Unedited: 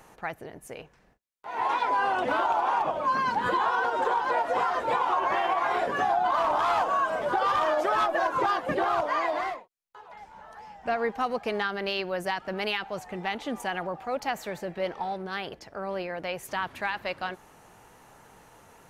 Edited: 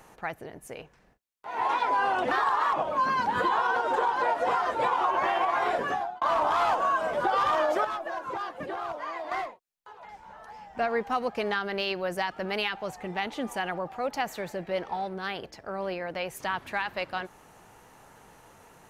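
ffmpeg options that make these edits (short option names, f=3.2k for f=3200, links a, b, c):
-filter_complex "[0:a]asplit=6[a][b][c][d][e][f];[a]atrim=end=2.314[g];[b]atrim=start=2.31:end=2.82,asetpts=PTS-STARTPTS,asetrate=52920,aresample=44100,atrim=end_sample=18742,asetpts=PTS-STARTPTS[h];[c]atrim=start=2.816:end=6.3,asetpts=PTS-STARTPTS,afade=t=out:st=3.074:d=0.41[i];[d]atrim=start=6.3:end=7.932,asetpts=PTS-STARTPTS,afade=t=in:d=0.004:c=hsin[j];[e]atrim=start=7.928:end=9.402,asetpts=PTS-STARTPTS,volume=-8.5dB[k];[f]atrim=start=9.398[l];[g][h]acrossfade=d=0.004:c1=hsin:c2=hsin[m];[i][j]concat=n=2:v=0:a=1[n];[m][n]acrossfade=d=0.004:c1=hsin:c2=hsin[o];[o][k]acrossfade=d=0.004:c1=hsin:c2=hsin[p];[p][l]acrossfade=d=0.004:c1=hsin:c2=hsin"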